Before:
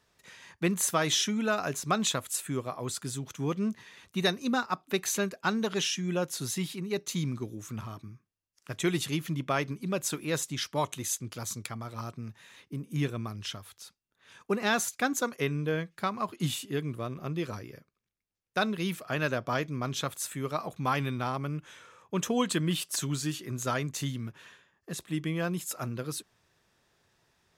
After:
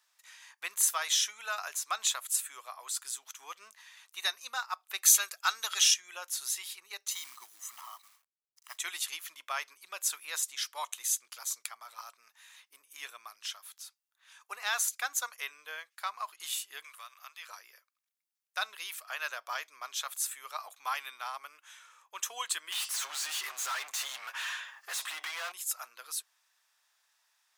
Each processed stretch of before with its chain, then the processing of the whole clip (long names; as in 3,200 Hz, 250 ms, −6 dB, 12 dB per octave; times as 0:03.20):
0:05.04–0:05.94: high-shelf EQ 2,600 Hz +10 dB + notch filter 3,100 Hz, Q 16 + hollow resonant body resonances 1,300/3,300 Hz, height 10 dB
0:07.11–0:08.78: comb filter 1 ms, depth 86% + log-companded quantiser 6 bits
0:16.84–0:17.49: high-pass filter 1,100 Hz + multiband upward and downward compressor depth 70%
0:22.72–0:25.52: comb filter 7.4 ms, depth 42% + downward compressor 4 to 1, threshold −33 dBFS + mid-hump overdrive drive 32 dB, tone 3,000 Hz, clips at −22.5 dBFS
whole clip: high-pass filter 850 Hz 24 dB per octave; high-shelf EQ 5,700 Hz +9.5 dB; level −4 dB